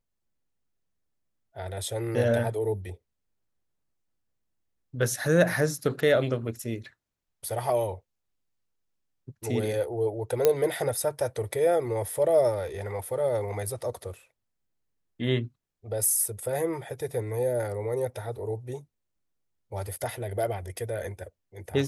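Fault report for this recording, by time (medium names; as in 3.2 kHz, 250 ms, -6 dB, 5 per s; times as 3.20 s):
10.45 s: pop -7 dBFS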